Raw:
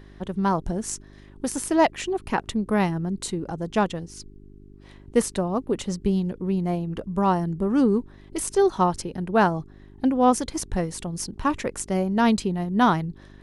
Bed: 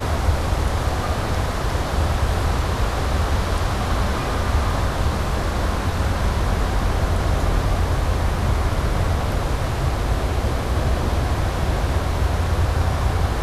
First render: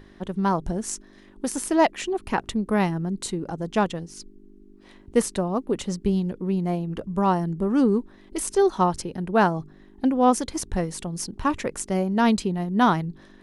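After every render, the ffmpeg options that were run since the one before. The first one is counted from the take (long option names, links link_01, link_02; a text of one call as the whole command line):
ffmpeg -i in.wav -af "bandreject=frequency=50:width_type=h:width=4,bandreject=frequency=100:width_type=h:width=4,bandreject=frequency=150:width_type=h:width=4" out.wav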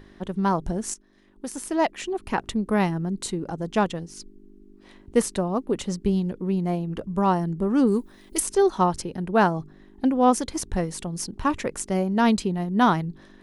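ffmpeg -i in.wav -filter_complex "[0:a]asplit=3[link_01][link_02][link_03];[link_01]afade=type=out:start_time=7.86:duration=0.02[link_04];[link_02]aemphasis=mode=production:type=75fm,afade=type=in:start_time=7.86:duration=0.02,afade=type=out:start_time=8.39:duration=0.02[link_05];[link_03]afade=type=in:start_time=8.39:duration=0.02[link_06];[link_04][link_05][link_06]amix=inputs=3:normalize=0,asplit=2[link_07][link_08];[link_07]atrim=end=0.94,asetpts=PTS-STARTPTS,afade=type=out:start_time=0.936:duration=0.004:curve=hsin:silence=0.251189[link_09];[link_08]atrim=start=0.94,asetpts=PTS-STARTPTS,afade=type=in:duration=1.62:silence=0.251189[link_10];[link_09][link_10]concat=n=2:v=0:a=1" out.wav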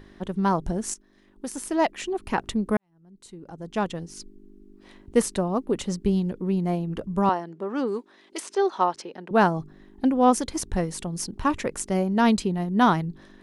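ffmpeg -i in.wav -filter_complex "[0:a]asettb=1/sr,asplit=3[link_01][link_02][link_03];[link_01]atrim=end=7.294[link_04];[link_02]atrim=start=7.29:end=9.31,asetpts=PTS-STARTPTS,afade=type=in:duration=0.004:curve=qsin,afade=type=out:start_time=2.016:duration=0.004:curve=qsin,highpass=430,lowpass=4700[link_05];[link_03]atrim=start=9.306[link_06];[link_04][link_05]acrossfade=duration=0.004:curve1=hsin:curve2=qsin[link_07];[link_07][link_06]acrossfade=duration=0.004:curve1=qsin:curve2=hsin,asplit=2[link_08][link_09];[link_08]atrim=end=2.77,asetpts=PTS-STARTPTS,afade=type=out:start_time=2.766:duration=0.004:curve=hsin[link_10];[link_09]atrim=start=2.77,asetpts=PTS-STARTPTS,afade=type=in:duration=1.31:curve=qua[link_11];[link_10][link_11]concat=n=2:v=0:a=1" out.wav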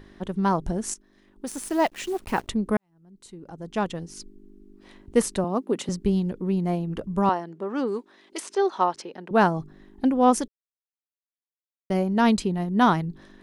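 ffmpeg -i in.wav -filter_complex "[0:a]asettb=1/sr,asplit=3[link_01][link_02][link_03];[link_01]atrim=end=1.474[link_04];[link_02]atrim=start=1.47:end=2.49,asetpts=PTS-STARTPTS,afade=type=in:duration=0.004:curve=qsin,afade=type=out:start_time=1.016:duration=0.004:curve=qsin,acrusher=bits=8:dc=4:mix=0:aa=0.000001[link_05];[link_03]atrim=start=2.486[link_06];[link_04][link_05]acrossfade=duration=0.004:curve1=hsin:curve2=qsin[link_07];[link_07][link_06]acrossfade=duration=0.004:curve1=qsin:curve2=hsin,asettb=1/sr,asplit=3[link_08][link_09][link_10];[link_08]atrim=end=5.444[link_11];[link_09]atrim=start=5.44:end=5.89,asetpts=PTS-STARTPTS,afade=type=in:duration=0.004:curve=qsin,afade=type=out:start_time=0.446:duration=0.004:curve=qsin,highpass=frequency=170:width=0.5412,highpass=frequency=170:width=1.3066[link_12];[link_10]atrim=start=5.886[link_13];[link_11][link_12]acrossfade=duration=0.004:curve1=hsin:curve2=qsin[link_14];[link_14][link_13]acrossfade=duration=0.004:curve1=qsin:curve2=hsin,asplit=3[link_15][link_16][link_17];[link_15]atrim=end=10.48,asetpts=PTS-STARTPTS,afade=type=out:start_time=10.476:duration=0.004:curve=hsin[link_18];[link_16]atrim=start=10.48:end=11.9,asetpts=PTS-STARTPTS,volume=0[link_19];[link_17]atrim=start=11.9,asetpts=PTS-STARTPTS,afade=type=in:duration=0.004:curve=hsin[link_20];[link_18][link_19][link_20]concat=n=3:v=0:a=1" out.wav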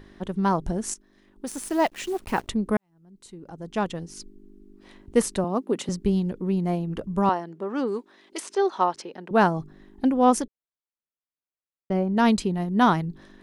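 ffmpeg -i in.wav -filter_complex "[0:a]asettb=1/sr,asplit=3[link_01][link_02][link_03];[link_01]atrim=end=10.424[link_04];[link_02]atrim=start=10.42:end=12.17,asetpts=PTS-STARTPTS,afade=type=in:duration=0.004:curve=qsin,afade=type=out:start_time=1.746:duration=0.004:curve=qsin,lowpass=frequency=1600:poles=1[link_05];[link_03]atrim=start=12.166[link_06];[link_04][link_05]acrossfade=duration=0.004:curve1=hsin:curve2=qsin[link_07];[link_07][link_06]acrossfade=duration=0.004:curve1=qsin:curve2=hsin" out.wav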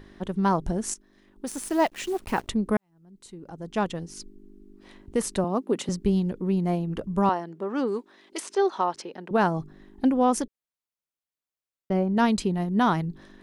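ffmpeg -i in.wav -af "alimiter=limit=-13dB:level=0:latency=1:release=116" out.wav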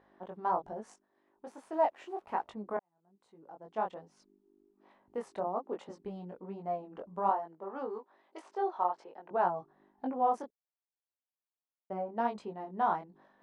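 ffmpeg -i in.wav -af "flanger=delay=18.5:depth=4.6:speed=1.2,bandpass=frequency=790:width_type=q:width=1.9:csg=0" out.wav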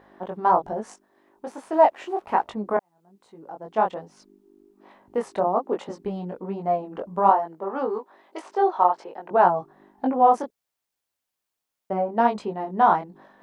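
ffmpeg -i in.wav -af "volume=12dB" out.wav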